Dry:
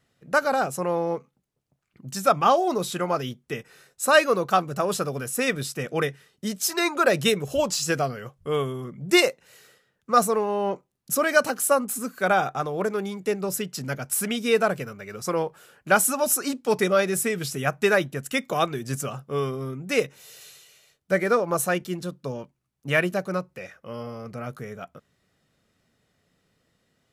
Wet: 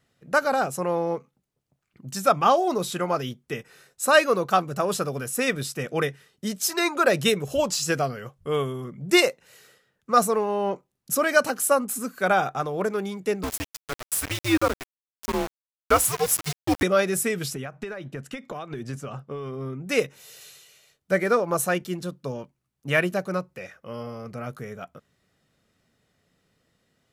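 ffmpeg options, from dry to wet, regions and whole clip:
-filter_complex "[0:a]asettb=1/sr,asplit=3[a][b][c];[a]atrim=end=13.434[d];[b]atrim=start=13.43:end=16.83,asetpts=PTS-STARTPTS,afade=t=in:d=0.004:c=qsin,afade=t=out:st=3.396:d=0.004:c=qsin,lowshelf=f=110:g=-9.5,afreqshift=-130,aeval=exprs='val(0)*gte(abs(val(0)),0.0501)':c=same[e];[c]atrim=start=16.826[f];[d][e]acrossfade=d=0.004:c1=hsin:c2=qsin[g];[g][f]acrossfade=d=0.004:c1=qsin:c2=hsin,asettb=1/sr,asplit=3[h][i][j];[h]atrim=end=17.544[k];[i]atrim=start=17.54:end=19.86,asetpts=PTS-STARTPTS,afade=t=in:d=0.004:c=qsin,afade=t=out:st=2.316:d=0.004:c=qsin,highpass=f=320:p=1,acompressor=threshold=-31dB:ratio=16:attack=3.2:release=140:knee=1:detection=peak,aemphasis=mode=reproduction:type=bsi[l];[j]atrim=start=19.856[m];[k][l]acrossfade=d=0.004:c1=hsin:c2=qsin[n];[n][m]acrossfade=d=0.004:c1=qsin:c2=hsin"

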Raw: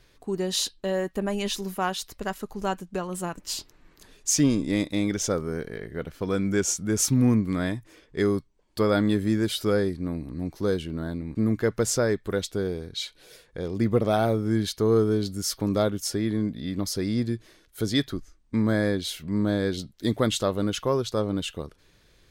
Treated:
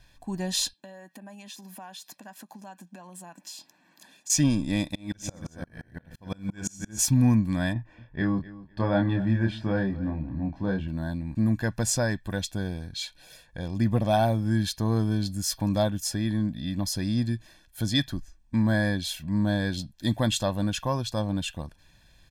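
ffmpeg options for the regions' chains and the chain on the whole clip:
-filter_complex "[0:a]asettb=1/sr,asplit=3[a][b][c];[a]atrim=end=0.734[d];[b]atrim=start=0.73:end=4.3,asetpts=PTS-STARTPTS,afade=t=in:d=0.004:c=qsin,afade=t=out:st=3.566:d=0.004:c=qsin,acompressor=threshold=-38dB:ratio=12:attack=3.2:release=140:knee=1:detection=peak,highpass=f=190:w=0.5412,highpass=f=190:w=1.3066[e];[c]atrim=start=4.296[f];[d][e]acrossfade=d=0.004:c1=hsin:c2=qsin[g];[g][f]acrossfade=d=0.004:c1=qsin:c2=hsin,asettb=1/sr,asplit=3[h][i][j];[h]atrim=end=4.954[k];[i]atrim=start=4.95:end=6.99,asetpts=PTS-STARTPTS,afade=t=in:d=0.004:c=qsin,afade=t=out:st=2.036:d=0.004:c=qsin,aecho=1:1:52|126|274:0.282|0.158|0.398,atrim=end_sample=89964,aeval=exprs='val(0)*pow(10,-33*if(lt(mod(-5.8*n/s,1),2*abs(-5.8)/1000),1-mod(-5.8*n/s,1)/(2*abs(-5.8)/1000),(mod(-5.8*n/s,1)-2*abs(-5.8)/1000)/(1-2*abs(-5.8)/1000))/20)':c=same[l];[j]atrim=start=6.986[m];[k][l]acrossfade=d=0.004:c1=hsin:c2=qsin[n];[n][m]acrossfade=d=0.004:c1=qsin:c2=hsin,asettb=1/sr,asplit=3[o][p][q];[o]atrim=end=7.734[r];[p]atrim=start=7.73:end=10.88,asetpts=PTS-STARTPTS,afade=t=in:d=0.004:c=qsin,afade=t=out:st=3.146:d=0.004:c=qsin,lowpass=2k,asplit=2[s][t];[t]adelay=26,volume=-4dB[u];[s][u]amix=inputs=2:normalize=0,atrim=end_sample=138915,aecho=1:1:252|504:0.126|0.0252,atrim=end_sample=138915[v];[q]atrim=start=10.876[w];[r][v]acrossfade=d=0.004:c1=hsin:c2=qsin[x];[x][w]acrossfade=d=0.004:c1=qsin:c2=hsin,bandreject=f=1.4k:w=23,aecho=1:1:1.2:0.83,volume=-2dB"

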